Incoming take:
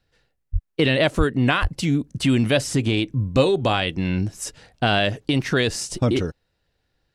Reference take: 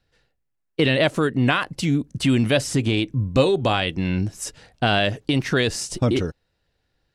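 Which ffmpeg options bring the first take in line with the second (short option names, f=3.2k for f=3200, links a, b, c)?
-filter_complex "[0:a]asplit=3[a][b][c];[a]afade=t=out:st=0.52:d=0.02[d];[b]highpass=f=140:w=0.5412,highpass=f=140:w=1.3066,afade=t=in:st=0.52:d=0.02,afade=t=out:st=0.64:d=0.02[e];[c]afade=t=in:st=0.64:d=0.02[f];[d][e][f]amix=inputs=3:normalize=0,asplit=3[g][h][i];[g]afade=t=out:st=1.17:d=0.02[j];[h]highpass=f=140:w=0.5412,highpass=f=140:w=1.3066,afade=t=in:st=1.17:d=0.02,afade=t=out:st=1.29:d=0.02[k];[i]afade=t=in:st=1.29:d=0.02[l];[j][k][l]amix=inputs=3:normalize=0,asplit=3[m][n][o];[m]afade=t=out:st=1.61:d=0.02[p];[n]highpass=f=140:w=0.5412,highpass=f=140:w=1.3066,afade=t=in:st=1.61:d=0.02,afade=t=out:st=1.73:d=0.02[q];[o]afade=t=in:st=1.73:d=0.02[r];[p][q][r]amix=inputs=3:normalize=0"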